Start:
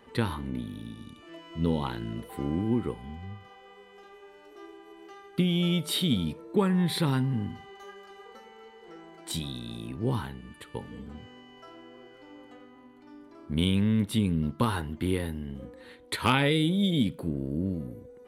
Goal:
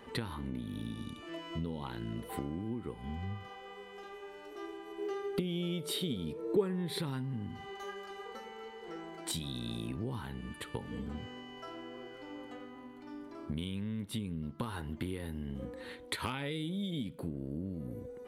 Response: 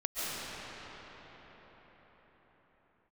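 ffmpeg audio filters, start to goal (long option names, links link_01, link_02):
-filter_complex "[0:a]acompressor=threshold=-37dB:ratio=12,asettb=1/sr,asplit=3[link_01][link_02][link_03];[link_01]atrim=end=4.984[link_04];[link_02]atrim=start=4.98:end=7,asetpts=PTS-STARTPTS,afade=type=in:duration=0.004:curve=qsin,afade=type=out:start_time=2.016:duration=0.004:curve=qsin,equalizer=frequency=420:width=3.2:gain=13[link_05];[link_03]atrim=start=6.996[link_06];[link_04][link_05]acrossfade=duration=0.004:curve1=hsin:curve2=qsin[link_07];[link_07][link_06]acrossfade=duration=0.004:curve1=qsin:curve2=hsin,volume=3dB"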